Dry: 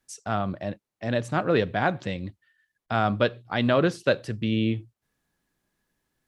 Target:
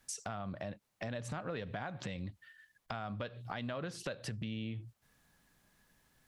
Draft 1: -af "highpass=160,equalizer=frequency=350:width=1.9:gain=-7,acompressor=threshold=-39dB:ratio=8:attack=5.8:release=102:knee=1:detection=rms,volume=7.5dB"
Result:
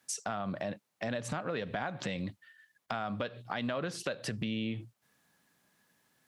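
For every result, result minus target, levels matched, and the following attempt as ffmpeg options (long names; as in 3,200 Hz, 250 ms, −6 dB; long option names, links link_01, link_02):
downward compressor: peak gain reduction −5.5 dB; 125 Hz band −4.0 dB
-af "highpass=160,equalizer=frequency=350:width=1.9:gain=-7,acompressor=threshold=-45dB:ratio=8:attack=5.8:release=102:knee=1:detection=rms,volume=7.5dB"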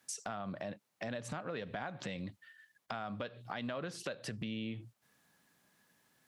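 125 Hz band −4.0 dB
-af "equalizer=frequency=350:width=1.9:gain=-7,acompressor=threshold=-45dB:ratio=8:attack=5.8:release=102:knee=1:detection=rms,volume=7.5dB"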